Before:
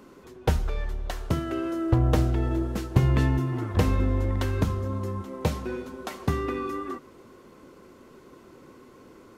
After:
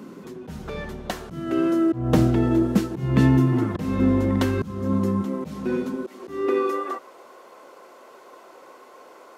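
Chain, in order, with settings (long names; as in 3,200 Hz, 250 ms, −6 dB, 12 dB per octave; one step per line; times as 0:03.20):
volume swells 306 ms
high-pass filter sweep 190 Hz → 670 Hz, 0:05.83–0:07.03
low-shelf EQ 98 Hz +11.5 dB
level +5 dB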